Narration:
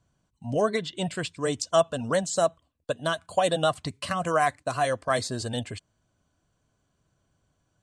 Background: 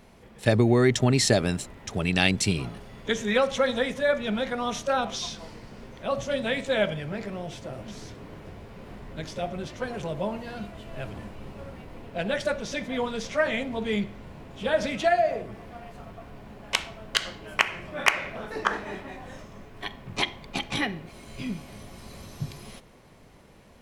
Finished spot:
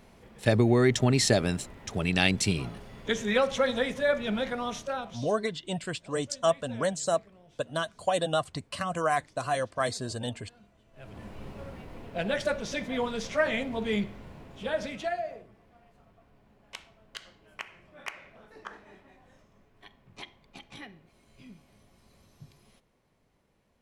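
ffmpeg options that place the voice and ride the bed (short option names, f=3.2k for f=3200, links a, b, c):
-filter_complex "[0:a]adelay=4700,volume=-3.5dB[a];[1:a]volume=18.5dB,afade=t=out:st=4.46:d=0.85:silence=0.1,afade=t=in:st=10.93:d=0.45:silence=0.0944061,afade=t=out:st=13.99:d=1.53:silence=0.158489[b];[a][b]amix=inputs=2:normalize=0"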